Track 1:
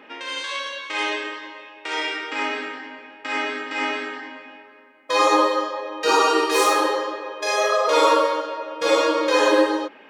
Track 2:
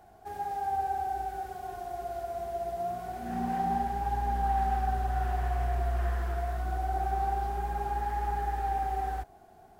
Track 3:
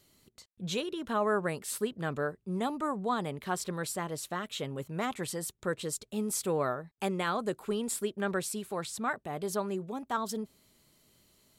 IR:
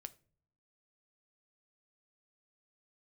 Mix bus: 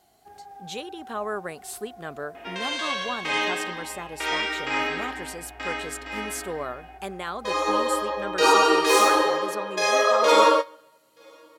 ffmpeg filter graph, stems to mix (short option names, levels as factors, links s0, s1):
-filter_complex "[0:a]adelay=2350,volume=2.37,afade=t=out:st=5.27:d=0.57:silence=0.398107,afade=t=in:st=7.65:d=0.46:silence=0.375837,afade=t=out:st=10.46:d=0.54:silence=0.251189,asplit=2[s0][s1];[s1]volume=0.178[s2];[1:a]acompressor=threshold=0.0224:ratio=6,volume=0.398[s3];[2:a]highpass=f=250:p=1,volume=0.944,asplit=2[s4][s5];[s5]apad=whole_len=549025[s6];[s0][s6]sidechaingate=range=0.0224:threshold=0.00112:ratio=16:detection=peak[s7];[3:a]atrim=start_sample=2205[s8];[s2][s8]afir=irnorm=-1:irlink=0[s9];[s7][s3][s4][s9]amix=inputs=4:normalize=0,lowshelf=f=86:g=-8.5"